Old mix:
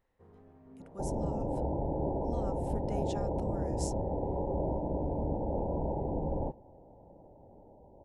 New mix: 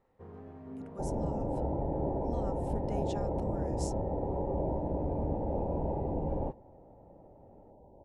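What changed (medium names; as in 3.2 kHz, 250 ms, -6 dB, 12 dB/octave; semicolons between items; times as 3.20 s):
first sound +9.5 dB; master: add treble shelf 6.5 kHz -4.5 dB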